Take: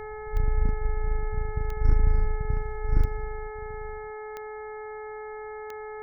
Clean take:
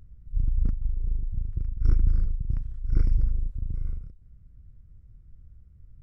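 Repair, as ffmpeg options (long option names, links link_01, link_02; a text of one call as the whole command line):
ffmpeg -i in.wav -af "adeclick=threshold=4,bandreject=frequency=428.4:width_type=h:width=4,bandreject=frequency=856.8:width_type=h:width=4,bandreject=frequency=1285.2:width_type=h:width=4,bandreject=frequency=1713.6:width_type=h:width=4,bandreject=frequency=2142:width_type=h:width=4,bandreject=frequency=790:width=30,asetnsamples=nb_out_samples=441:pad=0,asendcmd='3.05 volume volume 11.5dB',volume=0dB" out.wav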